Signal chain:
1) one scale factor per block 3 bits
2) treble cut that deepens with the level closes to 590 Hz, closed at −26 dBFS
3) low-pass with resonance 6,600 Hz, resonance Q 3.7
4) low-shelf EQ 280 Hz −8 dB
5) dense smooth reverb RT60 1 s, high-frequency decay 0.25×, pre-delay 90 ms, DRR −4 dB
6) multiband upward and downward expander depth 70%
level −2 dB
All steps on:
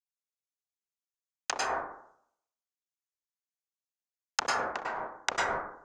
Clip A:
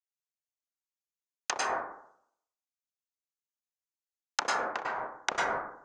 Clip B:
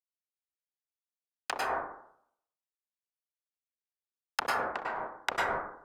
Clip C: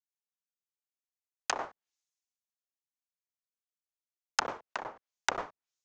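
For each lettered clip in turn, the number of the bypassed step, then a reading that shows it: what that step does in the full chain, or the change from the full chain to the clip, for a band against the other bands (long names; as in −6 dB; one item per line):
1, distortion level −8 dB
3, 8 kHz band −9.0 dB
5, change in crest factor +5.0 dB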